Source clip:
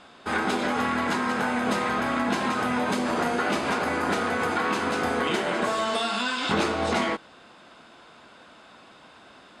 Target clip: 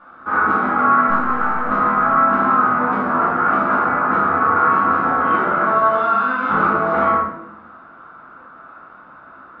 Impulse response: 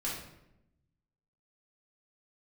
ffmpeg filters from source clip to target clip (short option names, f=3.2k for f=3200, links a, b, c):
-filter_complex "[0:a]asettb=1/sr,asplit=3[a][b][c];[a]atrim=end=1.084[d];[b]atrim=start=1.08:end=1.69,asetpts=PTS-STARTPTS,afade=t=in:d=0.004:c=qsin,afade=t=out:st=0.606:d=0.004:c=qsin,aeval=exprs='clip(val(0),-1,0.0224)':c=same[e];[c]atrim=start=1.686[f];[d][e]acrossfade=d=0.004:c1=hsin:c2=qsin[g];[g][f]acrossfade=d=0.004:c1=qsin:c2=hsin,lowpass=f=1.3k:t=q:w=6.8[h];[1:a]atrim=start_sample=2205[i];[h][i]afir=irnorm=-1:irlink=0,volume=-2dB"